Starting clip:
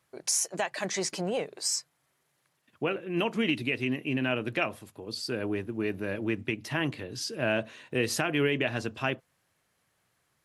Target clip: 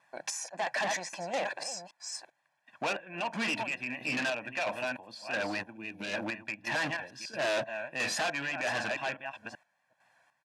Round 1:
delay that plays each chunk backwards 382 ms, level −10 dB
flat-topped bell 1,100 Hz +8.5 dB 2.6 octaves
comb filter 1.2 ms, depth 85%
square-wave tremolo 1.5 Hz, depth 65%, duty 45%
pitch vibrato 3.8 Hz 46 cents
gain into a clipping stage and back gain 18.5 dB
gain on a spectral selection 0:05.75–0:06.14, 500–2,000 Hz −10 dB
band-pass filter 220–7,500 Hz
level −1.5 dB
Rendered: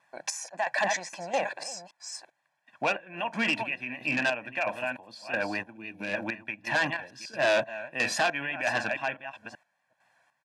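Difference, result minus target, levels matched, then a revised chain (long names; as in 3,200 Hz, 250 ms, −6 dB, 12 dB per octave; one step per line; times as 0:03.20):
gain into a clipping stage and back: distortion −5 dB
delay that plays each chunk backwards 382 ms, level −10 dB
flat-topped bell 1,100 Hz +8.5 dB 2.6 octaves
comb filter 1.2 ms, depth 85%
square-wave tremolo 1.5 Hz, depth 65%, duty 45%
pitch vibrato 3.8 Hz 46 cents
gain into a clipping stage and back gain 26.5 dB
gain on a spectral selection 0:05.75–0:06.14, 500–2,000 Hz −10 dB
band-pass filter 220–7,500 Hz
level −1.5 dB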